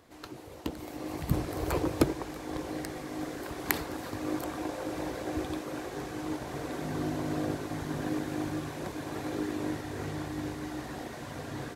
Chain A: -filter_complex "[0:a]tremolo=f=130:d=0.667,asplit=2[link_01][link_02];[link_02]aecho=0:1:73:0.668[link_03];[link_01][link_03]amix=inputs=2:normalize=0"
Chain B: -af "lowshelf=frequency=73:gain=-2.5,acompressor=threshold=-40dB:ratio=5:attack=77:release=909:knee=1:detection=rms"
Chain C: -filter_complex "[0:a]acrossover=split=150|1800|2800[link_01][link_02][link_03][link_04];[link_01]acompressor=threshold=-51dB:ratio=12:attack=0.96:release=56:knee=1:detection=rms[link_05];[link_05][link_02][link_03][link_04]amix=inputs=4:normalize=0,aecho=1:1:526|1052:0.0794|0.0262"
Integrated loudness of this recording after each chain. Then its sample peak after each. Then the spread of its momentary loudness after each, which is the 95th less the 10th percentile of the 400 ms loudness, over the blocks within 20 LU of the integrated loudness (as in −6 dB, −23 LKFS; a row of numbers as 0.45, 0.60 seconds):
−37.0, −43.5, −36.0 LKFS; −6.5, −13.5, −4.0 dBFS; 9, 3, 8 LU